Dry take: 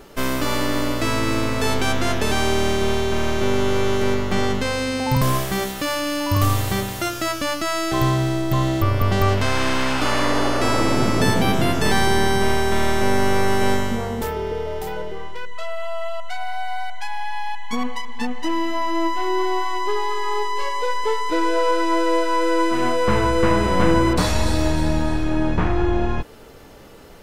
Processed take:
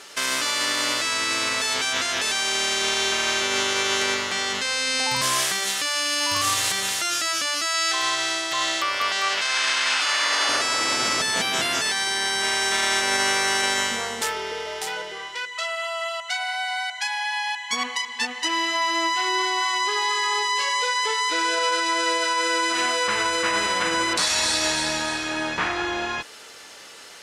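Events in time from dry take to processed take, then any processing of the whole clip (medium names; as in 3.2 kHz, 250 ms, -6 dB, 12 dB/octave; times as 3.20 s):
7.74–10.49 s: frequency weighting A
whole clip: frequency weighting ITU-R 468; peak limiter -12.5 dBFS; peaking EQ 1.7 kHz +2.5 dB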